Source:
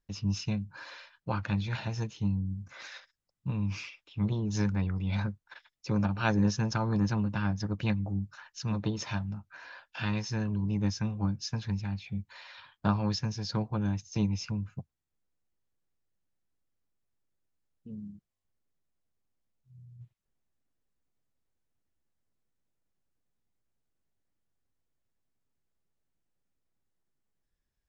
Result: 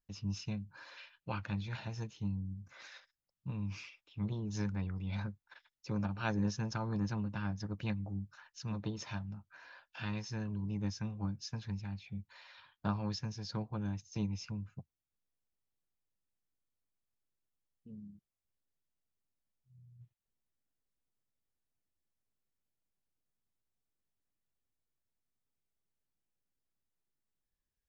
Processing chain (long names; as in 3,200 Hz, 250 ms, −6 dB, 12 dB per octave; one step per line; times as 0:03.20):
0:00.97–0:01.43: parametric band 2,700 Hz +10 dB 0.8 octaves
level −7.5 dB